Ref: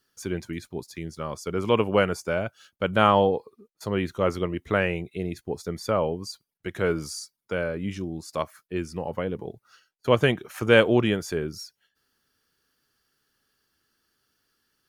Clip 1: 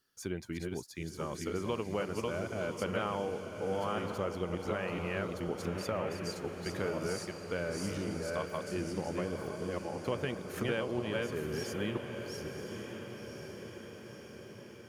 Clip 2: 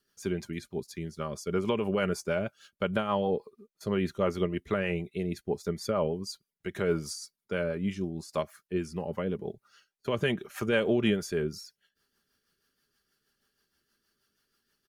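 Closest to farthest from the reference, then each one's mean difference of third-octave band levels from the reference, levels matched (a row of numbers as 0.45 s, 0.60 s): 2, 1; 2.5 dB, 11.5 dB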